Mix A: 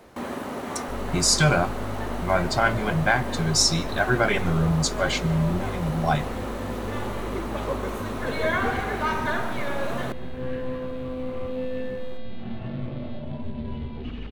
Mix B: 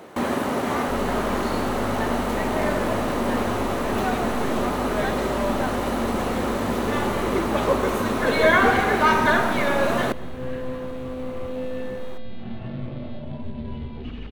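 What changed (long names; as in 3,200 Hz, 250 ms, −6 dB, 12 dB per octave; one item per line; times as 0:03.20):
speech: muted
first sound +8.0 dB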